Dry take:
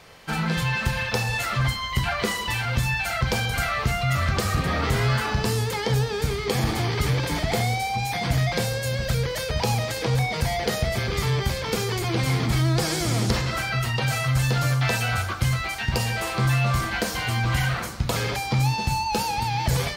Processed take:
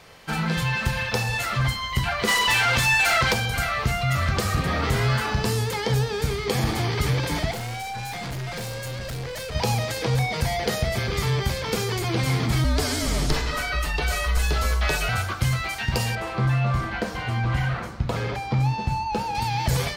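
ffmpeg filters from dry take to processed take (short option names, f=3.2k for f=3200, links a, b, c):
-filter_complex "[0:a]asplit=3[a][b][c];[a]afade=t=out:st=2.27:d=0.02[d];[b]asplit=2[e][f];[f]highpass=f=720:p=1,volume=18dB,asoftclip=type=tanh:threshold=-12dB[g];[e][g]amix=inputs=2:normalize=0,lowpass=f=7.7k:p=1,volume=-6dB,afade=t=in:st=2.27:d=0.02,afade=t=out:st=3.32:d=0.02[h];[c]afade=t=in:st=3.32:d=0.02[i];[d][h][i]amix=inputs=3:normalize=0,asettb=1/sr,asplit=3[j][k][l];[j]atrim=end=7.514[m];[k]atrim=start=7.51:end=9.55,asetpts=PTS-STARTPTS,afade=t=in:d=0.004:c=qsin,afade=t=out:st=2.036:d=0.004:c=qsin,aeval=exprs='(tanh(28.2*val(0)+0.2)-tanh(0.2))/28.2':c=same[n];[l]atrim=start=9.546[o];[m][n]acrossfade=d=0.004:c1=hsin:c2=qsin[p];[p][o]acrossfade=d=0.004:c1=qsin:c2=hsin,asettb=1/sr,asplit=3[q][r][s];[q]atrim=end=12.644[t];[r]atrim=start=12.64:end=15.09,asetpts=PTS-STARTPTS,afade=t=in:d=0.004:c=qsin,afade=t=out:st=2.446:d=0.004:c=qsin,afreqshift=-69[u];[s]atrim=start=15.086[v];[t][u]acrossfade=d=0.004:c1=hsin:c2=qsin[w];[w][v]acrossfade=d=0.004:c1=qsin:c2=hsin,asettb=1/sr,asplit=3[x][y][z];[x]atrim=end=16.154[aa];[y]atrim=start=16.15:end=19.35,asetpts=PTS-STARTPTS,afade=t=in:d=0.004:c=qsin,afade=t=out:st=3.196:d=0.004:c=qsin,lowpass=f=1.6k:p=1[ab];[z]atrim=start=19.346[ac];[aa][ab]acrossfade=d=0.004:c1=hsin:c2=qsin[ad];[ad][ac]acrossfade=d=0.004:c1=qsin:c2=hsin"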